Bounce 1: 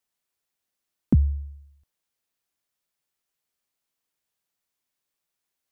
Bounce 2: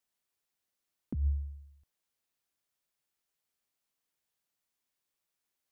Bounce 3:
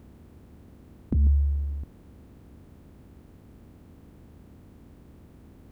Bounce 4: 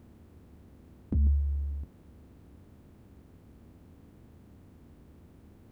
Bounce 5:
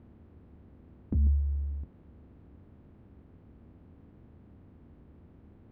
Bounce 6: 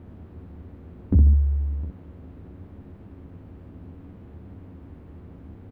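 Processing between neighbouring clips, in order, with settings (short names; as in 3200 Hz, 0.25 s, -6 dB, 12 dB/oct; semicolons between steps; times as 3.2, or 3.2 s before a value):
negative-ratio compressor -23 dBFS, ratio -1; gain -6.5 dB
per-bin compression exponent 0.4; gain +8.5 dB
flange 0.7 Hz, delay 8.3 ms, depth 5 ms, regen -47%
air absorption 360 m
early reflections 11 ms -4 dB, 64 ms -4.5 dB; gain +8.5 dB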